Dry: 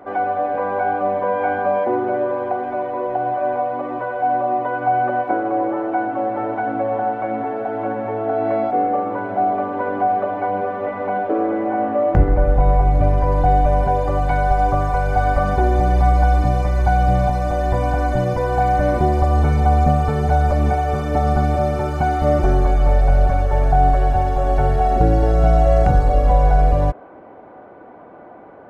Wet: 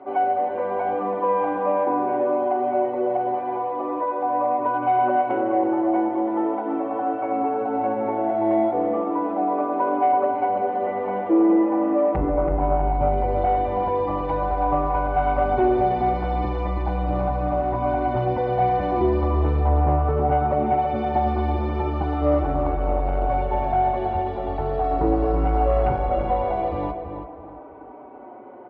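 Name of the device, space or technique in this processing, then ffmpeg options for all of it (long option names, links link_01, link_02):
barber-pole flanger into a guitar amplifier: -filter_complex "[0:a]asettb=1/sr,asplit=3[link_01][link_02][link_03];[link_01]atrim=end=19.674[link_04];[link_02]atrim=start=19.67:end=20.79,asetpts=PTS-STARTPTS,afade=type=in:duration=0.004:curve=qsin,afade=type=out:start_time=1.116:duration=0.004:curve=qsin,aemphasis=mode=reproduction:type=75fm[link_05];[link_03]atrim=start=20.786[link_06];[link_04][link_05]acrossfade=duration=0.004:curve1=hsin:curve2=qsin[link_07];[link_07][link_06]acrossfade=duration=0.004:curve1=qsin:curve2=hsin,asplit=2[link_08][link_09];[link_09]adelay=4.9,afreqshift=-0.39[link_10];[link_08][link_10]amix=inputs=2:normalize=1,asoftclip=type=tanh:threshold=-11dB,highpass=78,equalizer=frequency=100:width_type=q:width=4:gain=-8,equalizer=frequency=160:width_type=q:width=4:gain=-9,equalizer=frequency=340:width_type=q:width=4:gain=8,equalizer=frequency=960:width_type=q:width=4:gain=5,equalizer=frequency=1600:width_type=q:width=4:gain=-8,lowpass=frequency=3500:width=0.5412,lowpass=frequency=3500:width=1.3066,asplit=2[link_11][link_12];[link_12]adelay=329,lowpass=frequency=2200:poles=1,volume=-6.5dB,asplit=2[link_13][link_14];[link_14]adelay=329,lowpass=frequency=2200:poles=1,volume=0.3,asplit=2[link_15][link_16];[link_16]adelay=329,lowpass=frequency=2200:poles=1,volume=0.3,asplit=2[link_17][link_18];[link_18]adelay=329,lowpass=frequency=2200:poles=1,volume=0.3[link_19];[link_11][link_13][link_15][link_17][link_19]amix=inputs=5:normalize=0"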